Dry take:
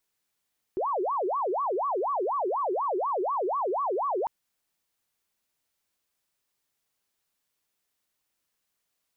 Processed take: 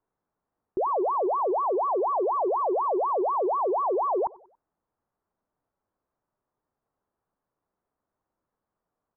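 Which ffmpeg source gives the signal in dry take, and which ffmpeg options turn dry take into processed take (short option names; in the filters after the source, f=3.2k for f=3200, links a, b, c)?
-f lavfi -i "aevalsrc='0.0562*sin(2*PI*(753*t-397/(2*PI*4.1)*sin(2*PI*4.1*t)))':d=3.5:s=44100"
-filter_complex "[0:a]lowpass=f=1.2k:w=0.5412,lowpass=f=1.2k:w=1.3066,asplit=2[a][b];[b]alimiter=level_in=9dB:limit=-24dB:level=0:latency=1,volume=-9dB,volume=1dB[c];[a][c]amix=inputs=2:normalize=0,aecho=1:1:94|188|282:0.0631|0.0284|0.0128"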